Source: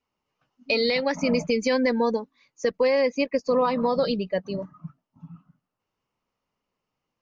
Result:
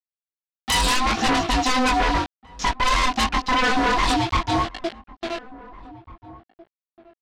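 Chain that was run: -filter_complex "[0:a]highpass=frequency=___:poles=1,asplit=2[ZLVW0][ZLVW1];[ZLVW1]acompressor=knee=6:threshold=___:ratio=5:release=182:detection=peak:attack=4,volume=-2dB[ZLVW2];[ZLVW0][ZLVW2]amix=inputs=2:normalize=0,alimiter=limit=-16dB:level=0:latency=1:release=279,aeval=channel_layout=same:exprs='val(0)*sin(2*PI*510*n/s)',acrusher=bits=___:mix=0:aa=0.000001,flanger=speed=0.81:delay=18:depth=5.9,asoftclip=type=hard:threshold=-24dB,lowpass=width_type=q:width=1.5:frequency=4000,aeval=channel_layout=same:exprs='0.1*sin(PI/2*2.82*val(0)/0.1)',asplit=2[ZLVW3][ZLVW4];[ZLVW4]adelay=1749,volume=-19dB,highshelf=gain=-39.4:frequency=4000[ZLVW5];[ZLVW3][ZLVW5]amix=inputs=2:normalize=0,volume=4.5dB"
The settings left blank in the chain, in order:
170, -38dB, 6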